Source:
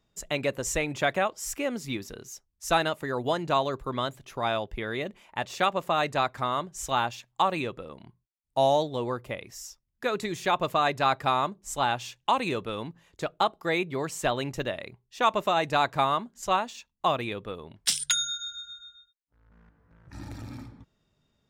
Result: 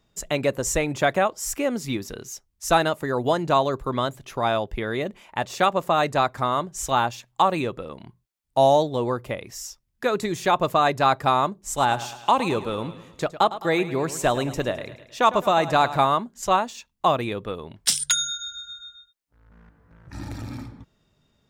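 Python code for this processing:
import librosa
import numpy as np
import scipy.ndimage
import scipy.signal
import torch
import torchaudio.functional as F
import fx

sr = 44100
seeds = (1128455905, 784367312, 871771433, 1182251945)

y = fx.echo_feedback(x, sr, ms=106, feedback_pct=52, wet_db=-14.5, at=(11.76, 16.06), fade=0.02)
y = fx.dynamic_eq(y, sr, hz=2700.0, q=0.86, threshold_db=-43.0, ratio=4.0, max_db=-5)
y = F.gain(torch.from_numpy(y), 6.0).numpy()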